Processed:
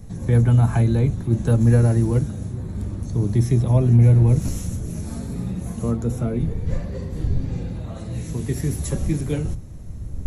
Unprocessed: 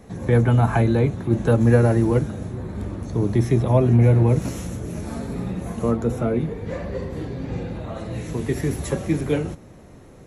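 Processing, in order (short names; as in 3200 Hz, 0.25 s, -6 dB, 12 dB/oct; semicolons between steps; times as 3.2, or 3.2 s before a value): wind noise 91 Hz -34 dBFS; tone controls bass +10 dB, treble +11 dB; gain -7 dB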